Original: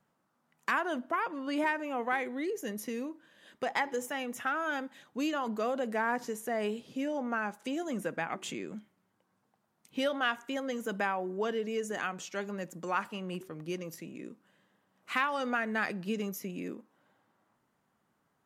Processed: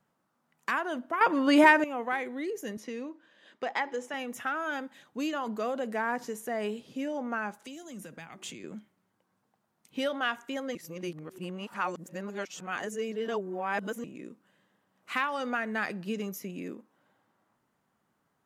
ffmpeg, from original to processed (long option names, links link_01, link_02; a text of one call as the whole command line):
ffmpeg -i in.wav -filter_complex "[0:a]asettb=1/sr,asplit=3[link_01][link_02][link_03];[link_01]atrim=end=2.774[link_04];[link_02]atrim=start=2.77:end=4.14,asetpts=PTS-STARTPTS,afade=type=in:duration=0.004:curve=qsin,afade=type=out:start_time=1.366:duration=0.004:curve=qsin,highpass=220,lowpass=5700[link_05];[link_03]atrim=start=4.136[link_06];[link_04][link_05]acrossfade=duration=0.004:curve1=hsin:curve2=qsin[link_07];[link_07][link_06]acrossfade=duration=0.004:curve1=qsin:curve2=hsin,asettb=1/sr,asplit=3[link_08][link_09][link_10];[link_08]atrim=end=7.584[link_11];[link_09]atrim=start=7.58:end=8.64,asetpts=PTS-STARTPTS,afade=type=in:duration=0.004:curve=qsin,afade=type=out:start_time=1.056:duration=0.004:curve=qsin,acrossover=split=160|3000[link_12][link_13][link_14];[link_13]acompressor=threshold=-45dB:ratio=6:attack=3.2:release=140:knee=2.83:detection=peak[link_15];[link_12][link_15][link_14]amix=inputs=3:normalize=0[link_16];[link_10]atrim=start=8.636[link_17];[link_11][link_16]acrossfade=duration=0.004:curve1=hsin:curve2=qsin[link_18];[link_18][link_17]acrossfade=duration=0.004:curve1=qsin:curve2=hsin,asplit=5[link_19][link_20][link_21][link_22][link_23];[link_19]atrim=end=1.212[link_24];[link_20]atrim=start=1.208:end=1.842,asetpts=PTS-STARTPTS,volume=11.5dB[link_25];[link_21]atrim=start=1.838:end=10.752[link_26];[link_22]atrim=start=10.748:end=14.042,asetpts=PTS-STARTPTS,areverse[link_27];[link_23]atrim=start=14.038[link_28];[link_24][link_25]acrossfade=duration=0.004:curve1=hsin:curve2=hsin[link_29];[link_29][link_26]acrossfade=duration=0.004:curve1=hsin:curve2=hsin[link_30];[link_30][link_27]acrossfade=duration=0.004:curve1=hsin:curve2=hsin[link_31];[link_31][link_28]acrossfade=duration=0.004:curve1=hsin:curve2=hsin" out.wav